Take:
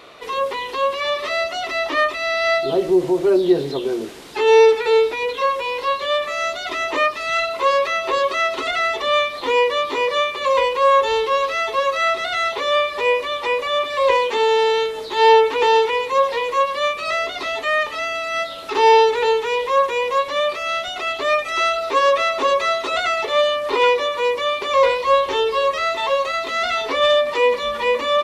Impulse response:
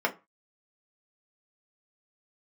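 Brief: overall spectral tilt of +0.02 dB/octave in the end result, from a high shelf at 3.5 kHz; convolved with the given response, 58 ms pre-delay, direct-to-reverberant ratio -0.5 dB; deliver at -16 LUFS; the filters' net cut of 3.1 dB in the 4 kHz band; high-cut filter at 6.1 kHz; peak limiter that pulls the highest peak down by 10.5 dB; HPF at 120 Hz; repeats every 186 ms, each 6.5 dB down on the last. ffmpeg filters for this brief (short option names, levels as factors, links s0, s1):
-filter_complex "[0:a]highpass=120,lowpass=6100,highshelf=f=3500:g=5.5,equalizer=f=4000:t=o:g=-7,alimiter=limit=0.211:level=0:latency=1,aecho=1:1:186|372|558|744|930|1116:0.473|0.222|0.105|0.0491|0.0231|0.0109,asplit=2[s0][s1];[1:a]atrim=start_sample=2205,adelay=58[s2];[s1][s2]afir=irnorm=-1:irlink=0,volume=0.299[s3];[s0][s3]amix=inputs=2:normalize=0,volume=1.19"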